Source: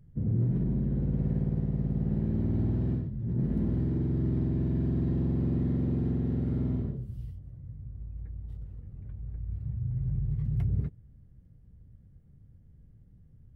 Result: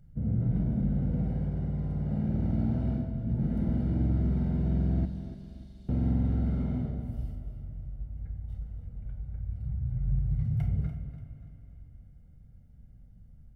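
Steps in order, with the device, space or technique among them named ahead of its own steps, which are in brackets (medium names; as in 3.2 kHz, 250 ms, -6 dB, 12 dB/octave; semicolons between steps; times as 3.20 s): microphone above a desk (comb 1.4 ms, depth 59%; reverberation RT60 0.35 s, pre-delay 28 ms, DRR 6 dB); 5.05–5.89 s: inverse Chebyshev band-stop 110–910 Hz, stop band 70 dB; peaking EQ 110 Hz -6 dB 1 oct; feedback delay 291 ms, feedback 38%, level -12 dB; spring tank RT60 3.7 s, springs 41/45 ms, chirp 75 ms, DRR 10 dB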